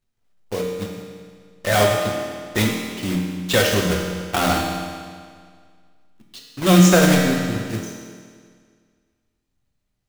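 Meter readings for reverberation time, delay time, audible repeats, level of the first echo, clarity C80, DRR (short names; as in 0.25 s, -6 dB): 1.9 s, none, none, none, 3.5 dB, -1.0 dB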